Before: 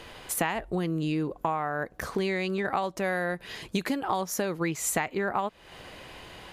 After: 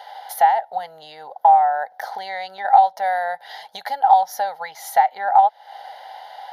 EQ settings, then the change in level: resonant high-pass 800 Hz, resonance Q 8.8; peaking EQ 1.6 kHz -3 dB 0.43 oct; static phaser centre 1.7 kHz, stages 8; +3.5 dB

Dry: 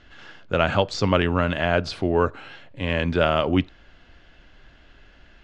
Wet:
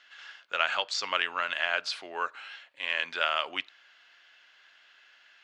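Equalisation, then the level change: high-pass 1.4 kHz 12 dB/octave; 0.0 dB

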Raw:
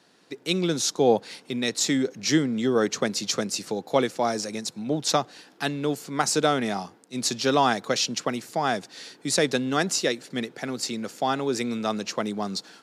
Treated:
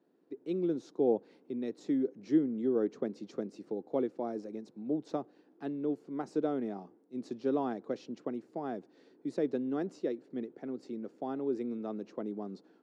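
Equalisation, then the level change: band-pass filter 330 Hz, Q 1.9; -4.0 dB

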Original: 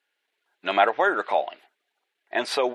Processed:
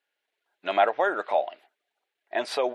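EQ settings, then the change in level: peaking EQ 620 Hz +5.5 dB 0.63 oct; -5.0 dB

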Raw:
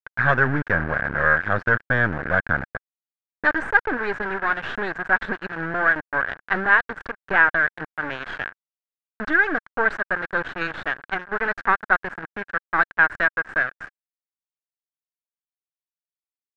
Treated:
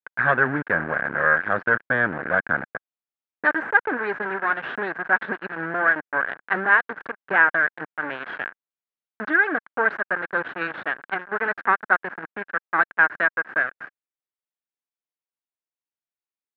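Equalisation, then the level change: band-pass 200–2700 Hz; 0.0 dB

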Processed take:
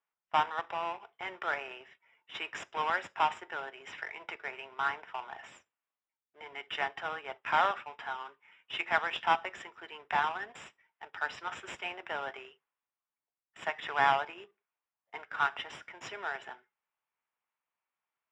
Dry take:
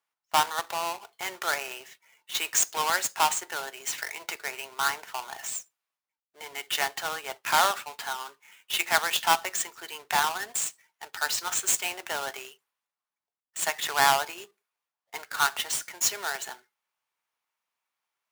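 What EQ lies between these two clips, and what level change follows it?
Savitzky-Golay filter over 25 samples; distance through air 96 m; -3.5 dB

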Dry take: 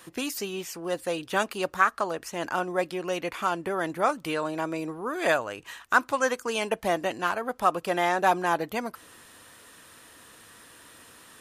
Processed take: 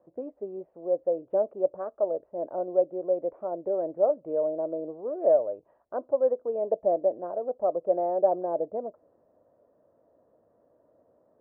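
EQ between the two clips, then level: bass shelf 70 Hz -8 dB; dynamic bell 440 Hz, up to +8 dB, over -41 dBFS, Q 1.2; four-pole ladder low-pass 650 Hz, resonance 75%; 0.0 dB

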